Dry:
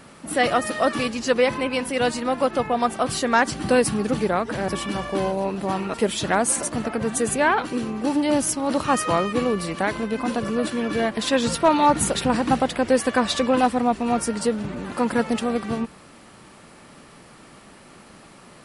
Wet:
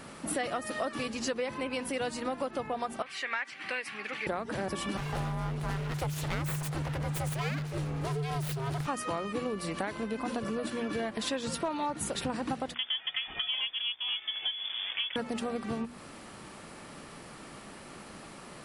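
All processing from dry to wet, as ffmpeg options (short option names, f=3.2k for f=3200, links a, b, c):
-filter_complex "[0:a]asettb=1/sr,asplit=3[a][b][c];[a]atrim=end=3.024[d];[b]atrim=start=3.02:end=4.27,asetpts=PTS-STARTPTS,afade=t=in:d=0.004:c=qsin,afade=t=out:st=1.246:d=0.004:c=qsin,bandpass=f=2.2k:t=q:w=3.6,acontrast=64[e];[c]atrim=start=4.266[f];[d][e]acrossfade=d=0.004:c1=hsin:c2=qsin[g];[g][f]acrossfade=d=0.004:c1=qsin:c2=hsin,asettb=1/sr,asplit=3[h][i][j];[h]atrim=end=4.974[k];[i]atrim=start=4.97:end=8.87,asetpts=PTS-STARTPTS,afade=t=in:d=0.004:c=qsin,afade=t=out:st=3.896:d=0.004:c=qsin,aeval=exprs='abs(val(0))':c=same,afreqshift=-150[l];[j]atrim=start=8.866[m];[k][l]acrossfade=d=0.004:c1=hsin:c2=qsin[n];[n][m]acrossfade=d=0.004:c1=qsin:c2=hsin,asettb=1/sr,asplit=3[o][p][q];[o]atrim=end=12.744[r];[p]atrim=start=12.74:end=15.16,asetpts=PTS-STARTPTS,afade=t=in:d=0.004:c=qsin,afade=t=out:st=2.416:d=0.004:c=qsin,aeval=exprs='sgn(val(0))*max(abs(val(0))-0.01,0)':c=same,lowpass=f=3.1k:t=q:w=0.5098,lowpass=f=3.1k:t=q:w=0.6013,lowpass=f=3.1k:t=q:w=0.9,lowpass=f=3.1k:t=q:w=2.563,afreqshift=-3600[s];[q]atrim=start=15.156[t];[r][s]acrossfade=d=0.004:c1=hsin:c2=qsin[u];[u][t]acrossfade=d=0.004:c1=qsin:c2=hsin,bandreject=f=60:t=h:w=6,bandreject=f=120:t=h:w=6,bandreject=f=180:t=h:w=6,bandreject=f=240:t=h:w=6,acompressor=threshold=-31dB:ratio=6"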